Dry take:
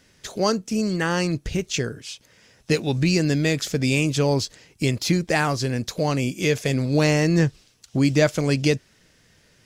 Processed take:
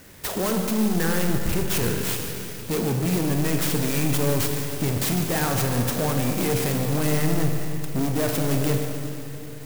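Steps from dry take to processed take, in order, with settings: in parallel at +1 dB: compressor with a negative ratio -28 dBFS, ratio -1; on the sum: saturation -22 dBFS, distortion -8 dB; two-band feedback delay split 610 Hz, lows 383 ms, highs 150 ms, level -15.5 dB; Schroeder reverb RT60 2.8 s, combs from 33 ms, DRR 2.5 dB; sampling jitter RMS 0.077 ms

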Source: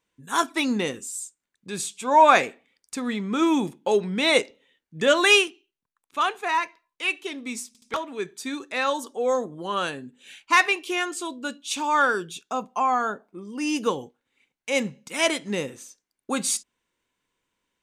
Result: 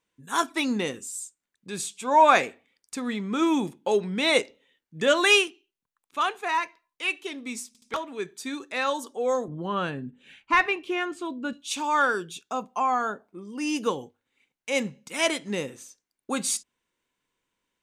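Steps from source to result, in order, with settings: 9.48–11.53 s: tone controls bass +11 dB, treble -15 dB; hum notches 50/100 Hz; trim -2 dB

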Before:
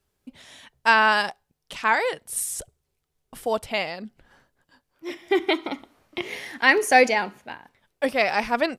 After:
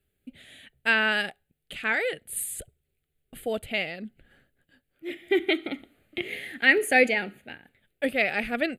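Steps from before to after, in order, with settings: static phaser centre 2.4 kHz, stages 4

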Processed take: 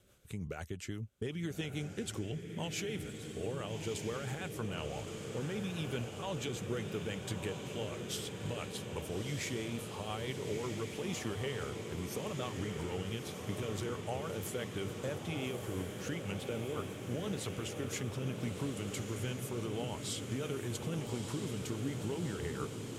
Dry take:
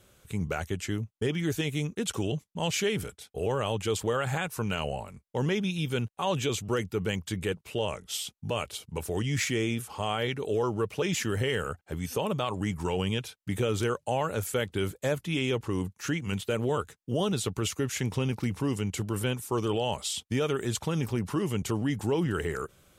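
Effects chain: compression, threshold -29 dBFS, peak gain reduction 6.5 dB; rotary cabinet horn 6 Hz; echo that smears into a reverb 1271 ms, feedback 76%, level -6 dB; trim -4.5 dB

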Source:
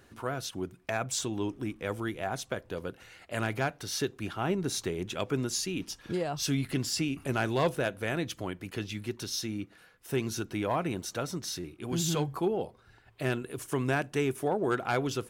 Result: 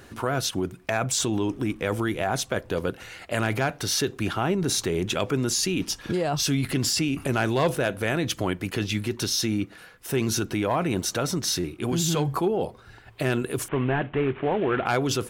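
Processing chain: 13.68–14.86 s: CVSD coder 16 kbps; in parallel at -3 dB: compressor with a negative ratio -35 dBFS, ratio -0.5; on the sum: trim +4 dB

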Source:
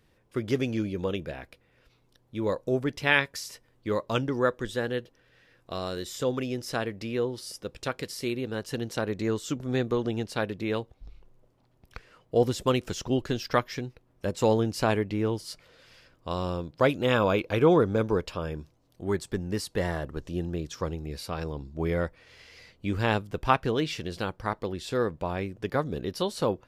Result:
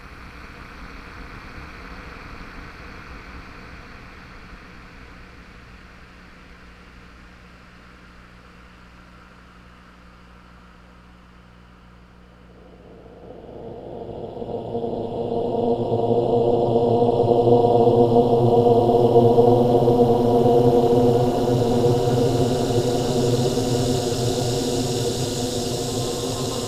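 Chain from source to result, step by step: Paulstretch 39×, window 0.25 s, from 11.92 s; AM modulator 230 Hz, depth 75%; hum 60 Hz, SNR 26 dB; on a send: echo that smears into a reverb 1539 ms, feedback 72%, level -8 dB; on the sum: trim +9 dB

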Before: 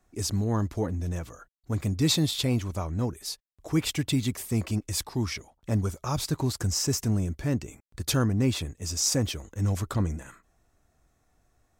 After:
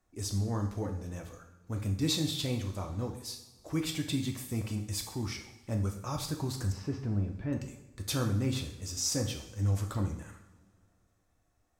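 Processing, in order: 6.72–7.53 s: Gaussian low-pass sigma 2.7 samples; two-slope reverb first 0.65 s, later 2.5 s, from -19 dB, DRR 3 dB; trim -7.5 dB

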